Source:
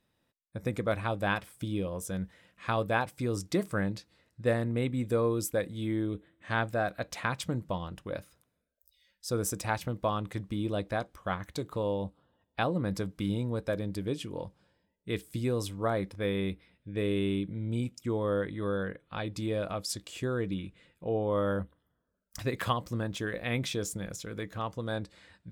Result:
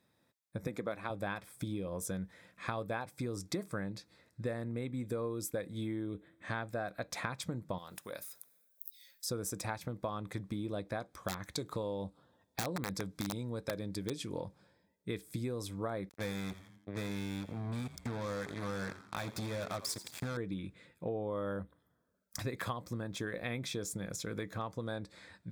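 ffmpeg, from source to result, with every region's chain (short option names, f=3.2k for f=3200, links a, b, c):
-filter_complex "[0:a]asettb=1/sr,asplit=3[a][b][c];[a]atrim=end=0.674[d];[b]atrim=start=0.67:end=1.1,asetpts=PTS-STARTPTS,afade=t=in:d=0.004:c=qsin,afade=t=out:st=0.426:d=0.004:c=qsin,highpass=170,equalizer=f=8.8k:w=5.1:g=-6[e];[c]atrim=start=1.096[f];[d][e]acrossfade=d=0.004:c1=hsin:c2=qsin[g];[g][f]acrossfade=d=0.004:c1=qsin:c2=hsin,asettb=1/sr,asplit=3[h][i][j];[h]atrim=end=7.784[k];[i]atrim=start=7.78:end=9.26,asetpts=PTS-STARTPTS,afade=t=in:d=0.004:c=qsin,afade=t=out:st=1.476:d=0.004:c=qsin,aemphasis=mode=production:type=riaa,bandreject=f=320:w=9.8,acompressor=threshold=-47dB:ratio=2:attack=3.2:release=140:knee=1:detection=peak[l];[j]atrim=start=9.256[m];[k][l]acrossfade=d=0.004:c1=hsin:c2=qsin[n];[n][m]acrossfade=d=0.004:c1=qsin:c2=hsin,asettb=1/sr,asplit=3[o][p][q];[o]atrim=end=11.154[r];[p]atrim=start=11.15:end=14.4,asetpts=PTS-STARTPTS,afade=t=in:d=0.004:c=qsin,afade=t=out:st=3.246:d=0.004:c=qsin,equalizer=f=5.7k:t=o:w=2:g=5.5,aeval=exprs='(mod(11.2*val(0)+1,2)-1)/11.2':c=same[s];[q]atrim=start=14.396[t];[r][s]acrossfade=d=0.004:c1=hsin:c2=qsin[u];[u][t]acrossfade=d=0.004:c1=qsin:c2=hsin,asettb=1/sr,asplit=3[v][w][x];[v]atrim=end=16.094[y];[w]atrim=start=16.09:end=20.37,asetpts=PTS-STARTPTS,afade=t=in:d=0.004:c=qsin,afade=t=out:st=4.276:d=0.004:c=qsin,equalizer=f=380:t=o:w=0.57:g=-14,acrusher=bits=5:mix=0:aa=0.5,asplit=5[z][aa][ab][ac][ad];[aa]adelay=85,afreqshift=-100,volume=-15.5dB[ae];[ab]adelay=170,afreqshift=-200,volume=-22.6dB[af];[ac]adelay=255,afreqshift=-300,volume=-29.8dB[ag];[ad]adelay=340,afreqshift=-400,volume=-36.9dB[ah];[z][ae][af][ag][ah]amix=inputs=5:normalize=0,atrim=end_sample=188748[ai];[x]atrim=start=20.366[aj];[y][ai]acrossfade=d=0.004:c1=hsin:c2=qsin[ak];[ak][aj]acrossfade=d=0.004:c1=qsin:c2=hsin,acompressor=threshold=-37dB:ratio=6,highpass=88,bandreject=f=2.9k:w=5,volume=2.5dB"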